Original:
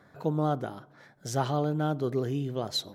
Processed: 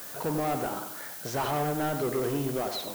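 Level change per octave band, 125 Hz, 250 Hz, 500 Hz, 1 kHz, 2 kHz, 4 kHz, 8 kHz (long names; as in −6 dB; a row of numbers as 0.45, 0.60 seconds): −5.0, −1.0, +1.0, +2.5, +6.0, −2.5, +4.5 decibels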